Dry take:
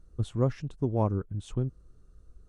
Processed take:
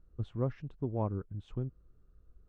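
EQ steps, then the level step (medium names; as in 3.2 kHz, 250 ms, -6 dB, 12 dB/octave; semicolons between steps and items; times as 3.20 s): low-pass 2.8 kHz 12 dB/octave; -6.5 dB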